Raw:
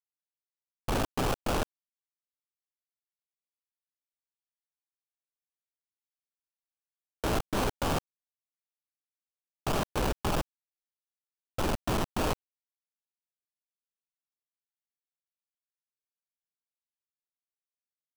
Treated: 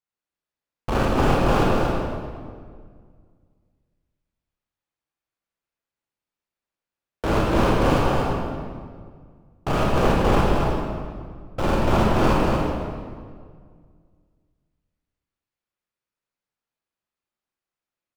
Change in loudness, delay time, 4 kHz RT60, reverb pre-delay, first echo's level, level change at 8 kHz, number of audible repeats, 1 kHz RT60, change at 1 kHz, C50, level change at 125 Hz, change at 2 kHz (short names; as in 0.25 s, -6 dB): +10.0 dB, 0.233 s, 1.3 s, 25 ms, -4.5 dB, +0.5 dB, 1, 1.8 s, +11.0 dB, -3.5 dB, +13.0 dB, +9.5 dB